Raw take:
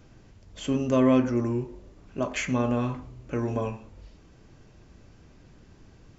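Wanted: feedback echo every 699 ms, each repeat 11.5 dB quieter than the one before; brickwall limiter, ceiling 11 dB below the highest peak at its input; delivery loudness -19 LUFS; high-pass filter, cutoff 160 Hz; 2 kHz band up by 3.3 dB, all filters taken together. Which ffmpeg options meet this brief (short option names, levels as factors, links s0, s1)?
-af "highpass=160,equalizer=f=2000:t=o:g=4,alimiter=limit=0.0944:level=0:latency=1,aecho=1:1:699|1398|2097:0.266|0.0718|0.0194,volume=4.47"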